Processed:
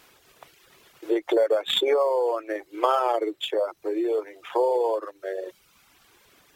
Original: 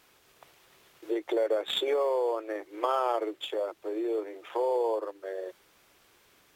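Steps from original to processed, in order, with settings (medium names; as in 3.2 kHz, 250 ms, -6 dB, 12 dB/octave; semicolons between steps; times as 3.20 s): reverb removal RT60 0.97 s; trim +7 dB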